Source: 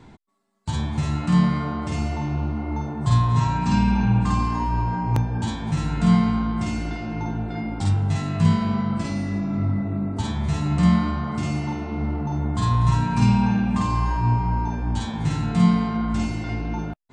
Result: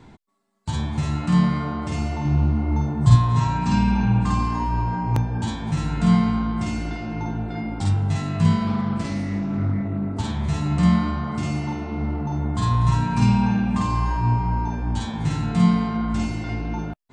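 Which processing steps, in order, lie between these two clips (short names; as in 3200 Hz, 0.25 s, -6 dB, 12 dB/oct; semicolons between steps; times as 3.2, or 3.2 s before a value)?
2.25–3.16 tone controls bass +7 dB, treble +3 dB; 8.67–10.48 Doppler distortion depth 0.2 ms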